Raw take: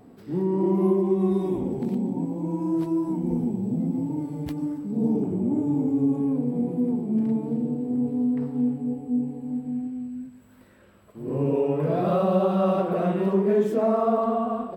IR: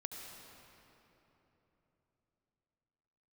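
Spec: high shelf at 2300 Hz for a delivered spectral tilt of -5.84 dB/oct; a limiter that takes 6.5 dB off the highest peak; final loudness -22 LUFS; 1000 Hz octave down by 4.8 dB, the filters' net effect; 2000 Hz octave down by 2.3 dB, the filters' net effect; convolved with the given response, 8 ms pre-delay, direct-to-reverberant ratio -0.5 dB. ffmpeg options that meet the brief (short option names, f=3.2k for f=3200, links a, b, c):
-filter_complex "[0:a]equalizer=f=1k:t=o:g=-8,equalizer=f=2k:t=o:g=-4,highshelf=f=2.3k:g=6.5,alimiter=limit=-18.5dB:level=0:latency=1,asplit=2[a][b];[1:a]atrim=start_sample=2205,adelay=8[c];[b][c]afir=irnorm=-1:irlink=0,volume=2dB[d];[a][d]amix=inputs=2:normalize=0,volume=1.5dB"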